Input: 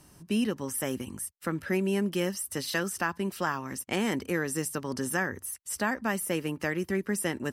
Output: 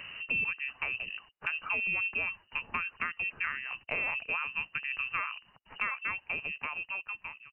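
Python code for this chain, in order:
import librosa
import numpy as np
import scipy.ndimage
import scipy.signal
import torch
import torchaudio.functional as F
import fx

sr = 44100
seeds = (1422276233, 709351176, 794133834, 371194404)

y = fx.fade_out_tail(x, sr, length_s=1.72)
y = fx.freq_invert(y, sr, carrier_hz=2900)
y = fx.band_squash(y, sr, depth_pct=70)
y = y * librosa.db_to_amplitude(-4.0)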